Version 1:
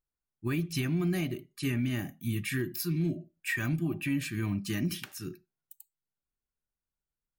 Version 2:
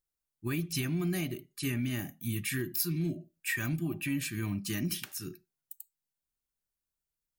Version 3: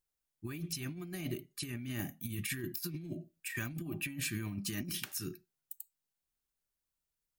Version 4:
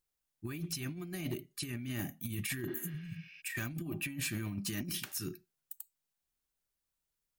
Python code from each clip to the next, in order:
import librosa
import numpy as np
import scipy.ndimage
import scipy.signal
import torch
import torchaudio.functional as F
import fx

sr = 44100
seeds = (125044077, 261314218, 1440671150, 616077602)

y1 = fx.high_shelf(x, sr, hz=4700.0, db=8.5)
y1 = y1 * 10.0 ** (-2.5 / 20.0)
y2 = fx.over_compress(y1, sr, threshold_db=-35.0, ratio=-0.5)
y2 = y2 * 10.0 ** (-3.0 / 20.0)
y3 = np.clip(10.0 ** (31.0 / 20.0) * y2, -1.0, 1.0) / 10.0 ** (31.0 / 20.0)
y3 = fx.spec_repair(y3, sr, seeds[0], start_s=2.7, length_s=0.68, low_hz=210.0, high_hz=6200.0, source='both')
y3 = y3 * 10.0 ** (1.0 / 20.0)